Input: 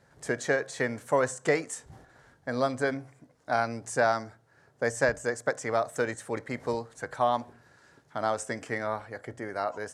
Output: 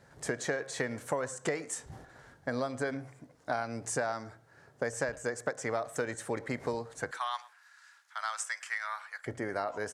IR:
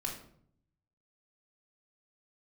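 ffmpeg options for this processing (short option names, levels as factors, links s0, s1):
-filter_complex "[0:a]asettb=1/sr,asplit=3[s0][s1][s2];[s0]atrim=end=7.114[s3];[s1]atrim=start=7.11:end=9.26,asetpts=PTS-STARTPTS,afade=t=in:d=0.004:c=qsin,afade=t=out:st=2.146:d=0.004:c=qsin,highpass=f=1200:w=0.5412,highpass=f=1200:w=1.3066[s4];[s2]atrim=start=9.256[s5];[s3][s4]acrossfade=d=0.004:c1=hsin:c2=qsin[s6];[s6][s5]acrossfade=d=0.004:c1=qsin:c2=hsin,acompressor=threshold=0.0251:ratio=6,asplit=2[s7][s8];[s8]adelay=110,highpass=300,lowpass=3400,asoftclip=type=hard:threshold=0.0355,volume=0.112[s9];[s7][s9]amix=inputs=2:normalize=0,volume=1.33"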